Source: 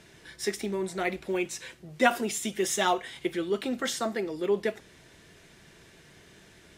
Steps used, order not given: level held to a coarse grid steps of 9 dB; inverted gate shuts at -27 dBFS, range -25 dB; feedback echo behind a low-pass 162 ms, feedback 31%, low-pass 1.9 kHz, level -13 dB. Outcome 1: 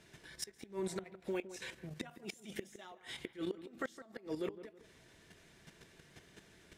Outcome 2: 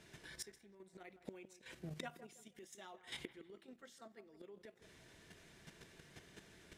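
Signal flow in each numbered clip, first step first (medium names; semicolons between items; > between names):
level held to a coarse grid > inverted gate > feedback echo behind a low-pass; inverted gate > level held to a coarse grid > feedback echo behind a low-pass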